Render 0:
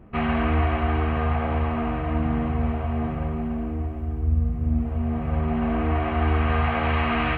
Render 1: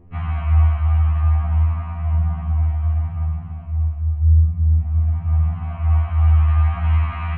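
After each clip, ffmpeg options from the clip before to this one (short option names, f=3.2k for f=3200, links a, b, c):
-af "aemphasis=mode=reproduction:type=bsi,afftfilt=real='re*2*eq(mod(b,4),0)':imag='im*2*eq(mod(b,4),0)':win_size=2048:overlap=0.75,volume=-4.5dB"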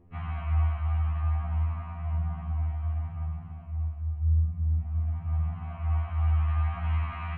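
-af "lowshelf=f=96:g=-5.5,volume=-7.5dB"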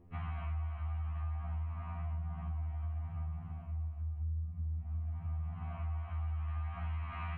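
-af "acompressor=threshold=-34dB:ratio=5,volume=-2dB"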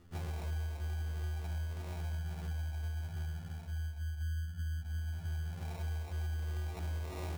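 -af "acrusher=samples=28:mix=1:aa=0.000001"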